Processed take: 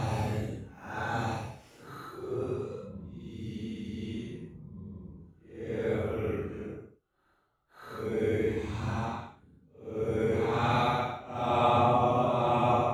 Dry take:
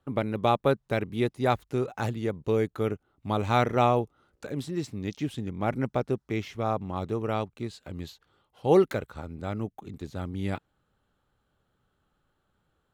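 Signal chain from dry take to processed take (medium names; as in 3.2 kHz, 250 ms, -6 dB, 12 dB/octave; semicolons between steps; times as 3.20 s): granulator 100 ms, grains 20 per s, spray 588 ms, pitch spread up and down by 0 st; Paulstretch 9.6×, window 0.05 s, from 2.08 s; trim -3 dB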